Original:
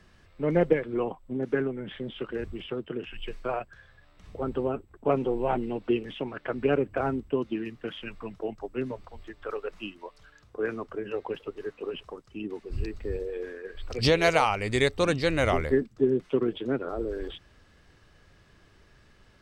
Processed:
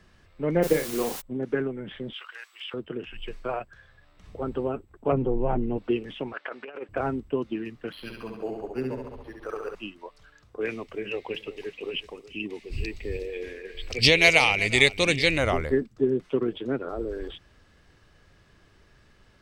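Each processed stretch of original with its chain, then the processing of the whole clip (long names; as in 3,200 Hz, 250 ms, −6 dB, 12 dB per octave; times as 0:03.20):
0:00.62–0:01.20: double-tracking delay 38 ms −7 dB + background noise white −37 dBFS
0:02.13–0:02.74: high-pass filter 1,000 Hz 24 dB per octave + high-shelf EQ 2,200 Hz +8.5 dB
0:05.12–0:05.78: low-pass filter 1,100 Hz 6 dB per octave + low-shelf EQ 140 Hz +11 dB + multiband upward and downward compressor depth 40%
0:06.33–0:06.89: band-pass filter 650–5,400 Hz + compressor whose output falls as the input rises −35 dBFS, ratio −0.5
0:07.92–0:09.75: flutter between parallel walls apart 11.8 metres, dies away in 1 s + linearly interpolated sample-rate reduction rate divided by 6×
0:10.61–0:15.38: high shelf with overshoot 1,800 Hz +7 dB, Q 3 + single-tap delay 369 ms −16.5 dB
whole clip: no processing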